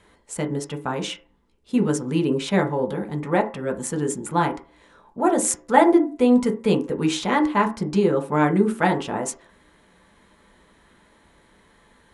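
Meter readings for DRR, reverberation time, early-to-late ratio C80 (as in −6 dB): 1.0 dB, 0.40 s, 18.5 dB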